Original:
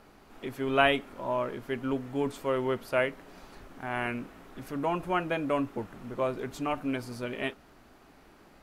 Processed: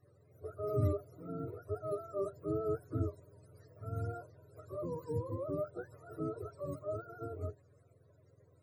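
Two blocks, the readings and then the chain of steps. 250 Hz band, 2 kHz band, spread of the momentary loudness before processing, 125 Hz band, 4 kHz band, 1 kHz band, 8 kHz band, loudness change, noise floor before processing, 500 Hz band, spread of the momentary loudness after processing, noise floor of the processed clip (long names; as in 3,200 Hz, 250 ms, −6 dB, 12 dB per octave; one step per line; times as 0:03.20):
−10.0 dB, −27.5 dB, 14 LU, +2.0 dB, below −30 dB, −16.0 dB, below −10 dB, −8.5 dB, −57 dBFS, −7.5 dB, 15 LU, −66 dBFS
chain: frequency axis turned over on the octave scale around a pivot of 410 Hz
phaser with its sweep stopped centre 830 Hz, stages 6
one half of a high-frequency compander decoder only
level −3.5 dB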